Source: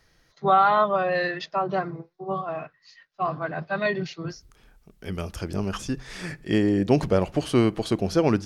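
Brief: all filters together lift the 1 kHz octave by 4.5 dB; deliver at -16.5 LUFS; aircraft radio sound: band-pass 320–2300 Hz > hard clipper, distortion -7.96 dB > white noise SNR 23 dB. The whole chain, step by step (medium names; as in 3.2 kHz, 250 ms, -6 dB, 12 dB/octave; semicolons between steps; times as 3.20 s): band-pass 320–2300 Hz; peaking EQ 1 kHz +6.5 dB; hard clipper -17.5 dBFS; white noise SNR 23 dB; trim +9.5 dB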